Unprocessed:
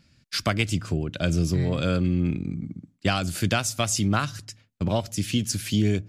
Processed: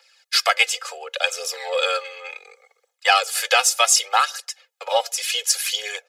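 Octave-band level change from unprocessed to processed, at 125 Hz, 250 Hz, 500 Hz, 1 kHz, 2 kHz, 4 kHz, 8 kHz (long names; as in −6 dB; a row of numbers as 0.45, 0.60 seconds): below −40 dB, below −35 dB, +4.0 dB, +10.5 dB, +9.5 dB, +10.0 dB, +10.0 dB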